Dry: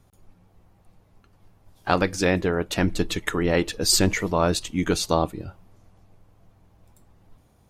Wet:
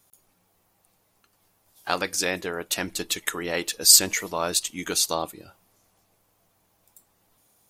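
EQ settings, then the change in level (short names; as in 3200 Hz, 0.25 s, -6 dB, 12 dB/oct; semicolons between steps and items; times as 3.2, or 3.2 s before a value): RIAA curve recording; -4.0 dB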